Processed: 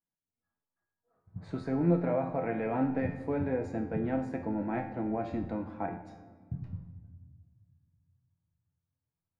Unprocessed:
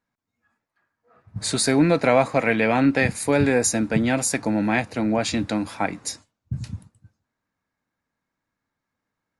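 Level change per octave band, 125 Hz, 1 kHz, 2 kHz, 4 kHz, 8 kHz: -8.0 dB, -11.5 dB, -19.5 dB, under -30 dB, under -40 dB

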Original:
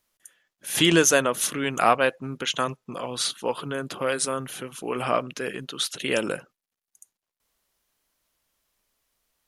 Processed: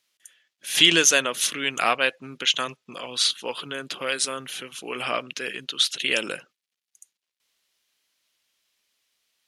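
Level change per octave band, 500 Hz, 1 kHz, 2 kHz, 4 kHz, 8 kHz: -5.0, -3.5, +3.0, +7.0, +2.0 dB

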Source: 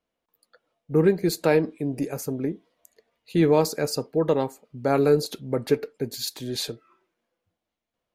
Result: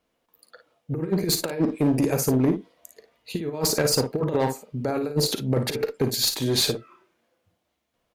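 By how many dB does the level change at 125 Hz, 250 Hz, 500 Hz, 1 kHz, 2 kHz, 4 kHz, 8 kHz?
+2.5, +1.0, -3.5, -1.5, 0.0, +8.0, +8.5 dB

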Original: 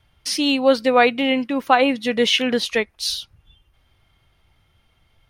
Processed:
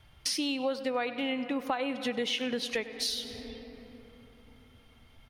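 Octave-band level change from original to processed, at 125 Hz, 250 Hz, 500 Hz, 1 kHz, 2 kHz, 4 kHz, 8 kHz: -9.5, -12.0, -14.0, -16.0, -14.0, -11.0, -8.0 dB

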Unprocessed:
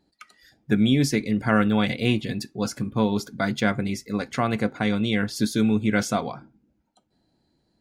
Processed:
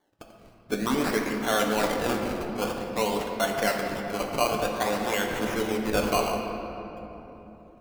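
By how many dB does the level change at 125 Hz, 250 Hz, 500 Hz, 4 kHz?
-11.5, -8.0, +1.5, -1.5 dB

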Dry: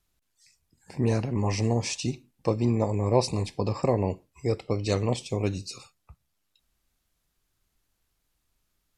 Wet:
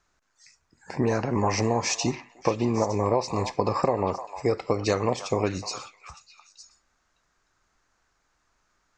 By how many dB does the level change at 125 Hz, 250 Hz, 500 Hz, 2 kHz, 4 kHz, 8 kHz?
-3.5, +0.5, +2.5, +5.5, +2.0, +4.5 dB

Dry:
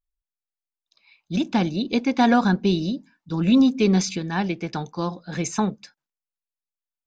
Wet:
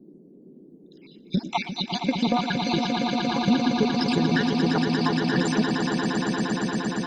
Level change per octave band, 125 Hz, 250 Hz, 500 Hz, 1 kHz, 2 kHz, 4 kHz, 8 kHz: -1.0, -1.5, -0.5, 0.0, +2.5, +4.0, -4.0 dB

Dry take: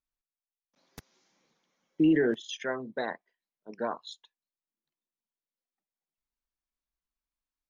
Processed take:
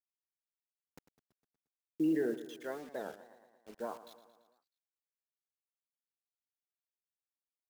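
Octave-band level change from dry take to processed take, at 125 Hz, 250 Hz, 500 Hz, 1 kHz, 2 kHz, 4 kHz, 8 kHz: -11.5 dB, -7.5 dB, -7.0 dB, -9.0 dB, -12.5 dB, -14.5 dB, n/a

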